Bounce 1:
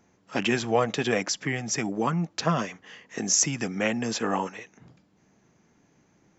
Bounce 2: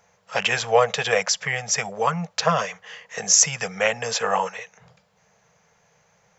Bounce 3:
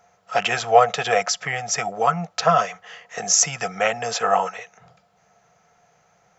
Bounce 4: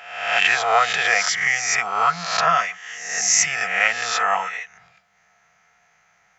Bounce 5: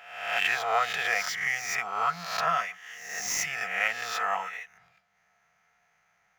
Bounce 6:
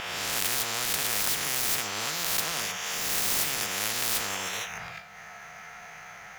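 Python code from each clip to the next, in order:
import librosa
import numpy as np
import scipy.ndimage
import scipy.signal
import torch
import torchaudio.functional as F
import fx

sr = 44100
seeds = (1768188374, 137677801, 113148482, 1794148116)

y1 = fx.curve_eq(x, sr, hz=(180.0, 310.0, 460.0), db=(0, -28, 8))
y1 = y1 * 10.0 ** (-1.5 / 20.0)
y2 = fx.small_body(y1, sr, hz=(310.0, 710.0, 1300.0), ring_ms=60, db=14)
y2 = y2 * 10.0 ** (-1.5 / 20.0)
y3 = fx.spec_swells(y2, sr, rise_s=0.84)
y3 = fx.graphic_eq_10(y3, sr, hz=(125, 250, 500, 2000), db=(-7, -4, -9, 10))
y3 = y3 * 10.0 ** (-3.5 / 20.0)
y4 = scipy.signal.medfilt(y3, 5)
y4 = y4 * 10.0 ** (-8.5 / 20.0)
y5 = fx.comb_fb(y4, sr, f0_hz=52.0, decay_s=0.36, harmonics='all', damping=0.0, mix_pct=60)
y5 = fx.spectral_comp(y5, sr, ratio=10.0)
y5 = y5 * 10.0 ** (6.0 / 20.0)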